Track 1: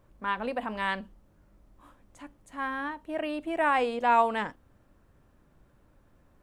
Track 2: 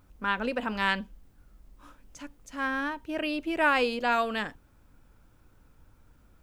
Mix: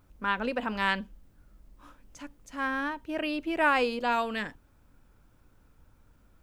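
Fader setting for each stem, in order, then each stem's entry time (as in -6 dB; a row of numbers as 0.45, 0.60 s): -12.0, -2.0 dB; 0.00, 0.00 s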